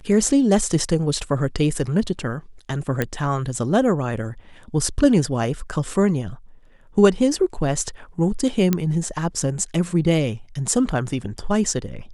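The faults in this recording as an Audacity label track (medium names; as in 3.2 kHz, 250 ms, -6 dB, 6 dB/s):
3.020000	3.020000	pop -8 dBFS
8.730000	8.730000	pop -6 dBFS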